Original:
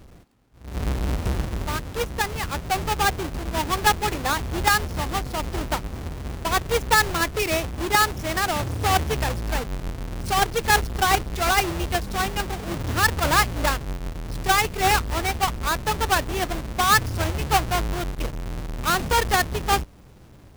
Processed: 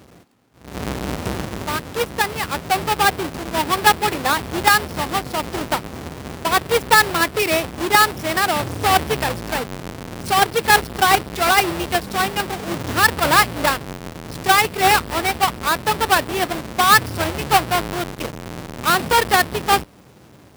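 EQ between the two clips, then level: Bessel high-pass 160 Hz, order 2; dynamic EQ 6500 Hz, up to -6 dB, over -46 dBFS, Q 3.9; +5.5 dB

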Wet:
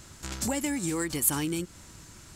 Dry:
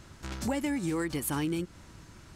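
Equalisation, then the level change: high shelf 4400 Hz +11 dB; bell 7400 Hz +5.5 dB 0.22 oct; 0.0 dB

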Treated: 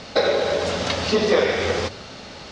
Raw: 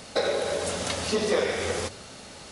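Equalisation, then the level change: LPF 5500 Hz 24 dB/oct; +6.5 dB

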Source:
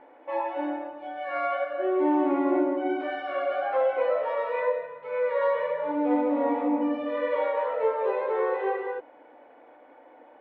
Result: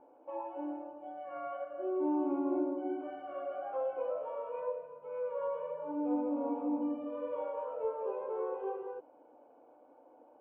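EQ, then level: dynamic EQ 610 Hz, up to -4 dB, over -34 dBFS, Q 1; running mean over 23 samples; -6.0 dB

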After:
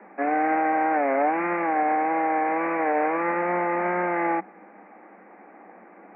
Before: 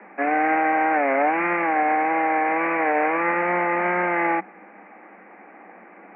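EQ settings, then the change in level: air absorption 140 m; low shelf 150 Hz -3.5 dB; high shelf 2200 Hz -11.5 dB; 0.0 dB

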